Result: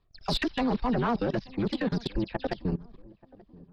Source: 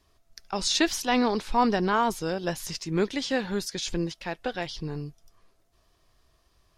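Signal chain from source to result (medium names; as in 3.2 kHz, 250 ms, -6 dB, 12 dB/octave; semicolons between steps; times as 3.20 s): delay that grows with frequency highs early, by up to 173 ms; steep low-pass 4.8 kHz 48 dB/octave; bass shelf 420 Hz +8.5 dB; in parallel at -2.5 dB: peak limiter -19 dBFS, peak gain reduction 10.5 dB; on the sum: level held to a coarse grid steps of 23 dB; saturation -19 dBFS, distortion -18 dB; granular stretch 0.55×, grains 21 ms; on a send: filtered feedback delay 882 ms, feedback 47%, low-pass 810 Hz, level -22 dB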